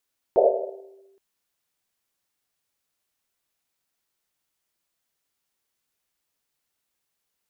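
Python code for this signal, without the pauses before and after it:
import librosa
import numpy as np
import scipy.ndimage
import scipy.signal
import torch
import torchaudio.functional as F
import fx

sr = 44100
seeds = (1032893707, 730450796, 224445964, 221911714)

y = fx.risset_drum(sr, seeds[0], length_s=0.82, hz=390.0, decay_s=1.46, noise_hz=570.0, noise_width_hz=240.0, noise_pct=75)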